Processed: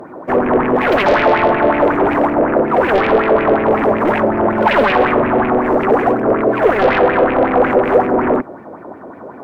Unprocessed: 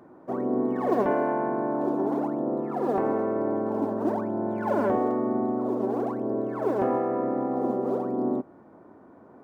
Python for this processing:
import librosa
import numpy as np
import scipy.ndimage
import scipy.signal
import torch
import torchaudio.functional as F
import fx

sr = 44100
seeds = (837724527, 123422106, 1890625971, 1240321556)

p1 = fx.fold_sine(x, sr, drive_db=14, ceiling_db=-12.5)
p2 = x + (p1 * 10.0 ** (-8.0 / 20.0))
p3 = fx.bell_lfo(p2, sr, hz=5.4, low_hz=480.0, high_hz=2500.0, db=13)
y = p3 * 10.0 ** (2.5 / 20.0)